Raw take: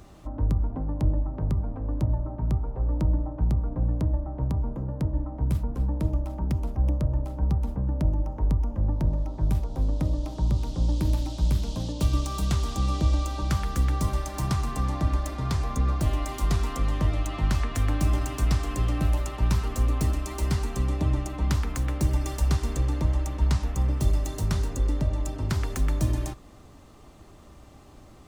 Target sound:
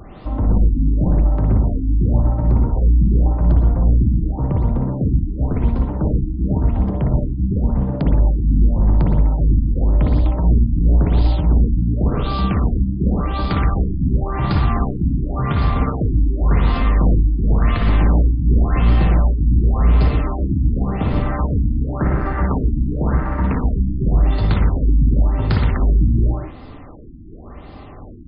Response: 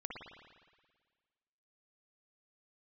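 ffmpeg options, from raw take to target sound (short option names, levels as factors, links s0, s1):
-filter_complex "[0:a]aeval=exprs='0.282*(cos(1*acos(clip(val(0)/0.282,-1,1)))-cos(1*PI/2))+0.141*(cos(5*acos(clip(val(0)/0.282,-1,1)))-cos(5*PI/2))':c=same,asettb=1/sr,asplit=3[s0][s1][s2];[s0]atrim=end=21.224[s3];[s1]atrim=start=21.22:end=23.44,asetpts=PTS-STARTPTS,afade=t=in:d=0.004:c=qsin,afade=t=out:st=2.216:d=0.004:c=qsin,highshelf=f=2400:t=q:w=3:g=-14[s4];[s2]atrim=start=23.436[s5];[s3][s4]acrossfade=d=0.004:c1=hsin:c2=qsin[s6];[s6][s5]acrossfade=d=0.004:c1=qsin:c2=hsin[s7];[1:a]atrim=start_sample=2205,afade=t=out:st=0.24:d=0.01,atrim=end_sample=11025[s8];[s7][s8]afir=irnorm=-1:irlink=0,afftfilt=real='re*lt(b*sr/1024,320*pow(5200/320,0.5+0.5*sin(2*PI*0.91*pts/sr)))':imag='im*lt(b*sr/1024,320*pow(5200/320,0.5+0.5*sin(2*PI*0.91*pts/sr)))':win_size=1024:overlap=0.75,volume=1.58"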